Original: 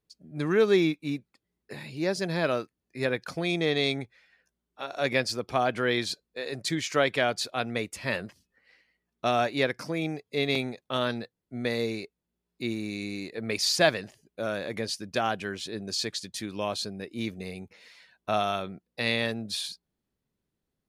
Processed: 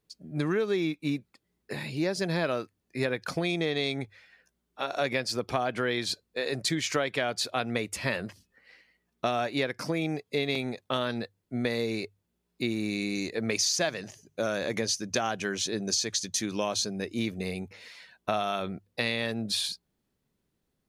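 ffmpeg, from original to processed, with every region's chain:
-filter_complex "[0:a]asettb=1/sr,asplit=3[s0][s1][s2];[s0]atrim=end=13.154[s3];[s1]atrim=start=13.15:end=17.19,asetpts=PTS-STARTPTS,afade=t=in:d=0.004:c=qsin,afade=t=out:st=4.036:d=0.004:c=qsin,equalizer=f=6200:w=3.9:g=12,bandreject=f=50:t=h:w=6,bandreject=f=100:t=h:w=6,bandreject=f=150:t=h:w=6[s4];[s2]atrim=start=17.186[s5];[s3][s4]acrossfade=d=0.004:c1=hsin:c2=qsin[s6];[s6][s5]acrossfade=d=0.004:c1=qsin:c2=hsin,bandreject=f=50:t=h:w=6,bandreject=f=100:t=h:w=6,acompressor=threshold=0.0316:ratio=6,volume=1.78"

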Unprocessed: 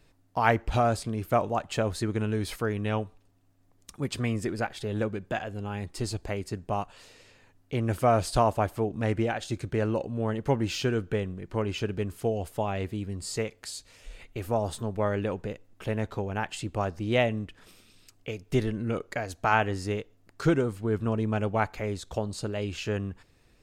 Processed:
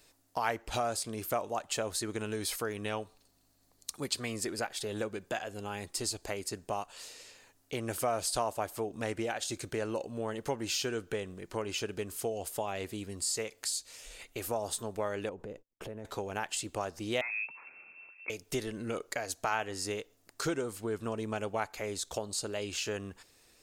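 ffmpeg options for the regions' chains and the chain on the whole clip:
-filter_complex "[0:a]asettb=1/sr,asplit=3[s0][s1][s2];[s0]atrim=end=2.974[s3];[s1]atrim=start=2.97:end=4.46,asetpts=PTS-STARTPTS,afade=t=in:d=0.004:c=qsin,afade=t=out:st=1.486:d=0.004:c=qsin,equalizer=f=4300:w=5.9:g=9.5,aeval=exprs='val(0)+0.000501*(sin(2*PI*50*n/s)+sin(2*PI*2*50*n/s)/2+sin(2*PI*3*50*n/s)/3+sin(2*PI*4*50*n/s)/4+sin(2*PI*5*50*n/s)/5)':c=same[s4];[s2]atrim=start=4.456[s5];[s3][s4]acrossfade=d=0.004:c1=hsin:c2=qsin[s6];[s6][s5]acrossfade=d=0.004:c1=qsin:c2=hsin,asettb=1/sr,asplit=3[s7][s8][s9];[s7]atrim=end=15.294[s10];[s8]atrim=start=15.29:end=16.05,asetpts=PTS-STARTPTS,afade=t=in:d=0.004:c=qsin,afade=t=out:st=0.756:d=0.004:c=qsin,agate=range=0.0141:threshold=0.00355:ratio=16:release=100:detection=peak,tiltshelf=f=1300:g=9,acompressor=threshold=0.0178:ratio=5:attack=3.2:release=140:knee=1:detection=peak[s11];[s9]atrim=start=16.046[s12];[s10][s11]acrossfade=d=0.004:c1=hsin:c2=qsin[s13];[s13][s12]acrossfade=d=0.004:c1=qsin:c2=hsin,asettb=1/sr,asplit=3[s14][s15][s16];[s14]atrim=end=17.214[s17];[s15]atrim=start=17.21:end=18.3,asetpts=PTS-STARTPTS,afade=t=in:d=0.004:c=qsin,afade=t=out:st=1.086:d=0.004:c=qsin,acompressor=mode=upward:threshold=0.00562:ratio=2.5:attack=3.2:release=140:knee=2.83:detection=peak,asoftclip=type=hard:threshold=0.0335,lowpass=f=2300:t=q:w=0.5098,lowpass=f=2300:t=q:w=0.6013,lowpass=f=2300:t=q:w=0.9,lowpass=f=2300:t=q:w=2.563,afreqshift=-2700[s18];[s16]atrim=start=18.296[s19];[s17][s18]acrossfade=d=0.004:c1=hsin:c2=qsin[s20];[s20][s19]acrossfade=d=0.004:c1=qsin:c2=hsin,bass=f=250:g=-11,treble=f=4000:g=11,acompressor=threshold=0.02:ratio=2"

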